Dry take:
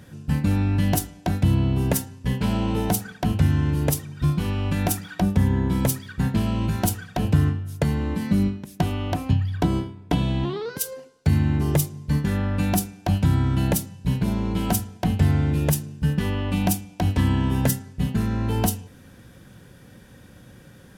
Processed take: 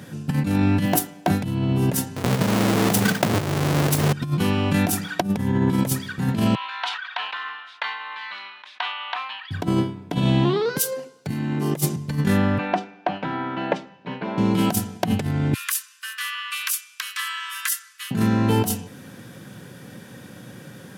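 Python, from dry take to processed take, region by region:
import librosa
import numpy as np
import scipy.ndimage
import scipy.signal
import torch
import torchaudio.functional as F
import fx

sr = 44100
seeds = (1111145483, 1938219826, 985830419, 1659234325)

y = fx.chain(x, sr, fx.highpass(hz=340.0, slope=6),
    fx.peak_eq(hz=6000.0, db=-6.5, octaves=2.3),
    fx.quant_float(bits=4), at=(0.85, 1.3))
y = fx.chain(y, sr, fx.halfwave_hold(),
    fx.over_compress(threshold_db=-25.0, ratio=-1.0), at=(2.16, 4.13))
y = fx.chain(y, sr, fx.cheby1_bandpass(low_hz=970.0, high_hz=3800.0, order=3),
    fx.sustainer(db_per_s=57.0), at=(6.55, 9.51))
y = fx.chain(y, sr, fx.highpass(hz=150.0, slope=24),
    fx.over_compress(threshold_db=-29.0, ratio=-0.5), at=(11.29, 11.96))
y = fx.chain(y, sr, fx.bandpass_edges(low_hz=490.0, high_hz=2400.0),
    fx.air_absorb(metres=120.0), at=(12.58, 14.38))
y = fx.chain(y, sr, fx.steep_highpass(hz=1100.0, slope=96),
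    fx.peak_eq(hz=11000.0, db=3.0, octaves=0.68), at=(15.54, 18.11))
y = scipy.signal.sosfilt(scipy.signal.butter(4, 120.0, 'highpass', fs=sr, output='sos'), y)
y = fx.over_compress(y, sr, threshold_db=-25.0, ratio=-0.5)
y = F.gain(torch.from_numpy(y), 6.0).numpy()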